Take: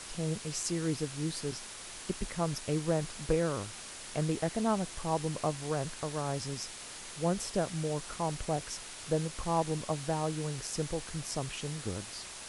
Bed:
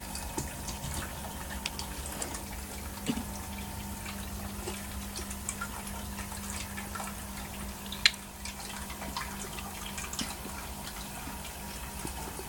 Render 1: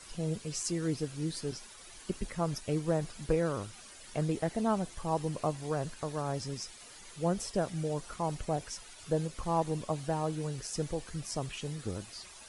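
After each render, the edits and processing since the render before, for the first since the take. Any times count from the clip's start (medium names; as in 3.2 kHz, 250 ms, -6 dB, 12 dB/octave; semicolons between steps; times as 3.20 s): noise reduction 11 dB, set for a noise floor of -46 dBFS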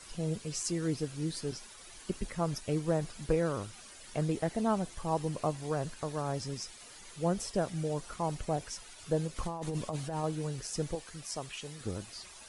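9.36–10.24 s: compressor with a negative ratio -35 dBFS; 10.95–11.81 s: bass shelf 360 Hz -10 dB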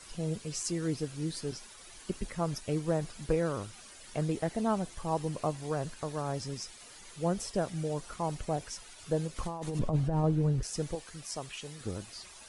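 9.79–10.63 s: tilt EQ -3.5 dB/octave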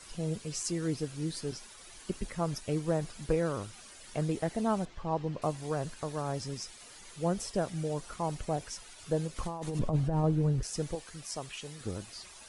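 4.85–5.42 s: distance through air 170 m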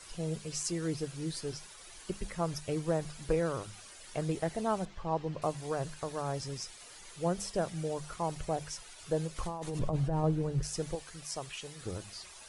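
peaking EQ 240 Hz -6.5 dB 0.54 oct; hum notches 50/100/150/200 Hz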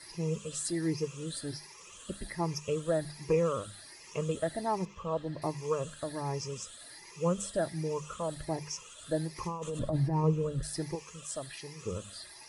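drifting ripple filter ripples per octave 0.78, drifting +1.3 Hz, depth 13 dB; comb of notches 750 Hz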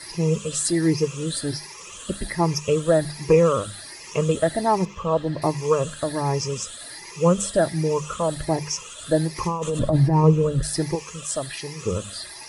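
trim +11.5 dB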